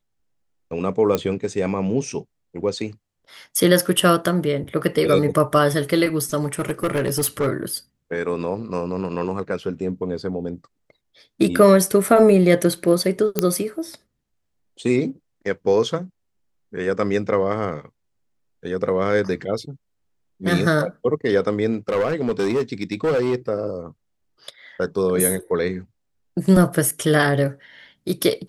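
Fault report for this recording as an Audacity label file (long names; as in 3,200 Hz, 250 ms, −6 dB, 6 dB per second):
1.150000	1.150000	click −7 dBFS
6.430000	7.480000	clipping −16.5 dBFS
13.390000	13.390000	click −3 dBFS
21.730000	23.350000	clipping −16 dBFS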